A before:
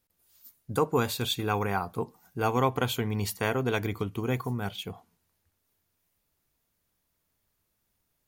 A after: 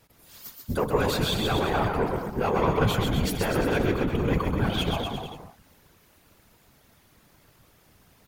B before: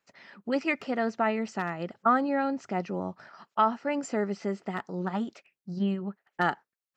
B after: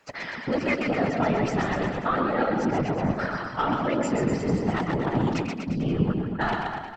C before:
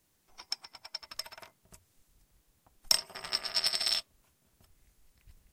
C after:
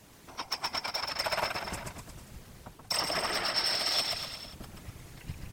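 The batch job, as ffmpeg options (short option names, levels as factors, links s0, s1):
-filter_complex "[0:a]highpass=42,apsyclip=11.9,areverse,acompressor=threshold=0.0891:ratio=6,areverse,aeval=exprs='0.355*sin(PI/2*2*val(0)/0.355)':c=same,asplit=2[s0][s1];[s1]aecho=0:1:130|247|352.3|447.1|532.4:0.631|0.398|0.251|0.158|0.1[s2];[s0][s2]amix=inputs=2:normalize=0,afftfilt=real='hypot(re,im)*cos(2*PI*random(0))':imag='hypot(re,im)*sin(2*PI*random(1))':win_size=512:overlap=0.75,aemphasis=mode=reproduction:type=cd,volume=0.531"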